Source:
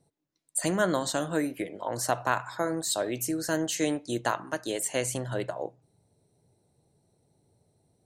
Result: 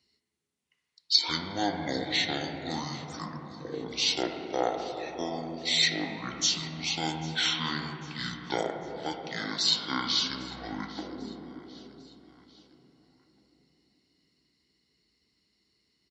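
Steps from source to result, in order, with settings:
high-pass filter 1,300 Hz 6 dB per octave
high-shelf EQ 4,800 Hz +7 dB
repeating echo 399 ms, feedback 47%, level −20.5 dB
on a send at −3 dB: convolution reverb RT60 2.4 s, pre-delay 7 ms
on the sum: wrong playback speed 15 ips tape played at 7.5 ips

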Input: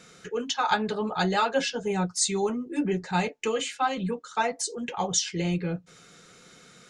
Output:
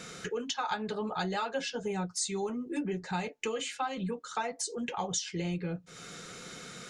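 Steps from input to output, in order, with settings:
downward compressor 3 to 1, threshold −43 dBFS, peak gain reduction 17.5 dB
level +7 dB

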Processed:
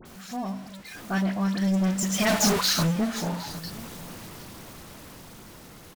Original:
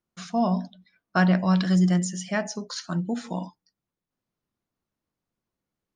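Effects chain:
converter with a step at zero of −27.5 dBFS
source passing by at 0:02.45, 17 m/s, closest 2.7 metres
in parallel at −1.5 dB: speech leveller 2 s
on the sum: hard clipping −26 dBFS, distortion −10 dB
all-pass dispersion highs, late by 56 ms, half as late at 1,900 Hz
on a send: single-tap delay 760 ms −18 dB
on the sum: level +5 dB

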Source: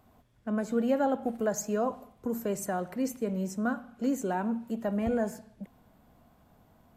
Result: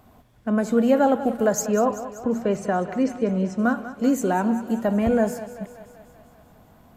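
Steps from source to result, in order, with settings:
0:01.66–0:03.59: low-pass filter 3,700 Hz 12 dB per octave
feedback echo with a high-pass in the loop 193 ms, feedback 64%, high-pass 270 Hz, level −13 dB
level +8.5 dB

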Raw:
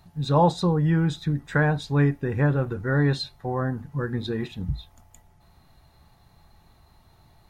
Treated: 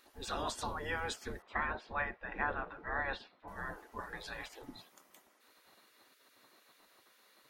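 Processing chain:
0:01.42–0:03.48: high-frequency loss of the air 370 metres
gate on every frequency bin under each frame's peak −20 dB weak
level +1.5 dB

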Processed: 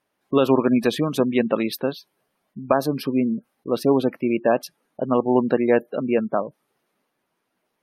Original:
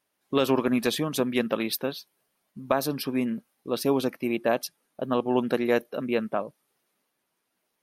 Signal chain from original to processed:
gate on every frequency bin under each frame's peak −25 dB strong
high-shelf EQ 3,200 Hz −10.5 dB
level +6 dB

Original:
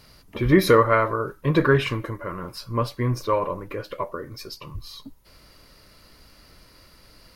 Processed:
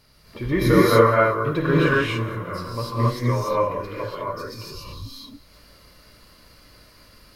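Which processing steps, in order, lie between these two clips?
feedback echo with a high-pass in the loop 185 ms, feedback 48%, level −19.5 dB
convolution reverb, pre-delay 3 ms, DRR −7.5 dB
level −6.5 dB

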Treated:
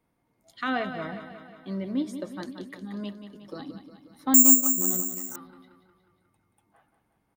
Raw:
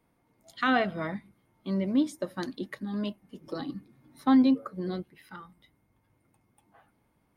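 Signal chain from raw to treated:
on a send: repeating echo 180 ms, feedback 59%, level −10 dB
0:04.34–0:05.36: on the sum: bad sample-rate conversion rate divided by 6×, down filtered, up zero stuff
level −3.5 dB

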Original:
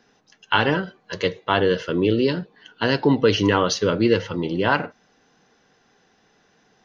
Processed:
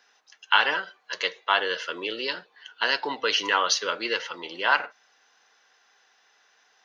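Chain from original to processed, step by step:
high-pass filter 980 Hz 12 dB per octave
level +1.5 dB

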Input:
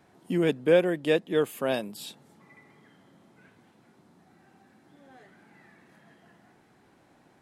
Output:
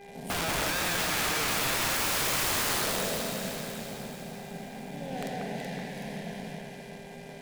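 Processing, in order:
peak hold with a decay on every bin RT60 2.90 s
low-shelf EQ 410 Hz +7 dB
downward compressor 1.5 to 1, threshold −33 dBFS, peak gain reduction 8 dB
leveller curve on the samples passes 5
hum with harmonics 400 Hz, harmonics 6, −40 dBFS −5 dB per octave
phaser with its sweep stopped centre 330 Hz, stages 6
wrap-around overflow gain 21 dB
delay that swaps between a low-pass and a high-pass 188 ms, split 2,500 Hz, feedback 73%, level −2.5 dB
level −4.5 dB

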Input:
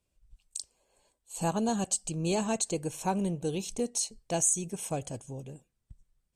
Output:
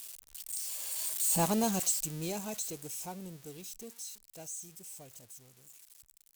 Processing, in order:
spike at every zero crossing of −23 dBFS
source passing by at 0:01.47, 15 m/s, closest 4.9 metres

